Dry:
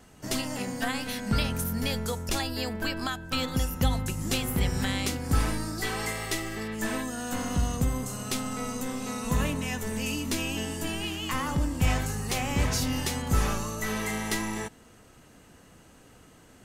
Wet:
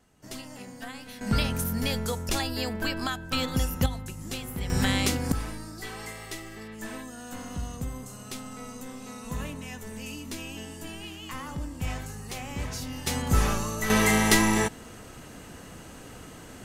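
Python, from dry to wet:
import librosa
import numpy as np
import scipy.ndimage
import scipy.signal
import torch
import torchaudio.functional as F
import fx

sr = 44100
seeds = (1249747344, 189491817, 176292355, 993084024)

y = fx.gain(x, sr, db=fx.steps((0.0, -10.0), (1.21, 1.0), (3.86, -7.0), (4.7, 4.0), (5.32, -7.5), (13.07, 2.0), (13.9, 9.5)))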